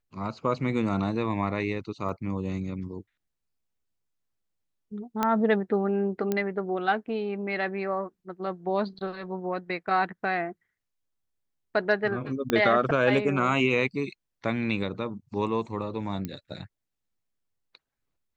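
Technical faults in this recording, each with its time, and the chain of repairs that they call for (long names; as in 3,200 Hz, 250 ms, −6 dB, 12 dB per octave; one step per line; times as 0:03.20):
0:02.09: drop-out 2.3 ms
0:05.23: click −11 dBFS
0:06.32: click −14 dBFS
0:12.50: click −11 dBFS
0:16.25: click −19 dBFS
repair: click removal
repair the gap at 0:02.09, 2.3 ms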